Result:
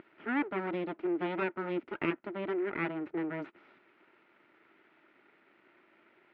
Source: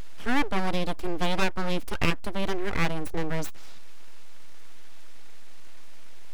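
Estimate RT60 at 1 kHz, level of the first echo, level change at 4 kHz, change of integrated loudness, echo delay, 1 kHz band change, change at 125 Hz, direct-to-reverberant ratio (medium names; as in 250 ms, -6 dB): no reverb, no echo, -17.0 dB, -5.0 dB, no echo, -7.5 dB, -12.5 dB, no reverb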